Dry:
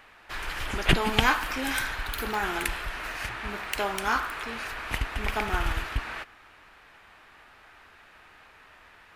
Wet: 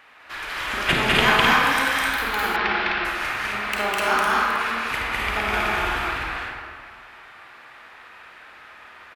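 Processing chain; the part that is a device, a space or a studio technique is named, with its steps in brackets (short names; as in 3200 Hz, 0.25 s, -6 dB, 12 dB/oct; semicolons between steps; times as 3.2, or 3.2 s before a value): stadium PA (HPF 150 Hz 6 dB/oct; bell 1900 Hz +4.5 dB 2.5 oct; loudspeakers at several distances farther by 70 m -1 dB, 88 m -3 dB; reverb RT60 1.9 s, pre-delay 29 ms, DRR -1 dB); 2.56–3.05 steep low-pass 5200 Hz 48 dB/oct; gain -2 dB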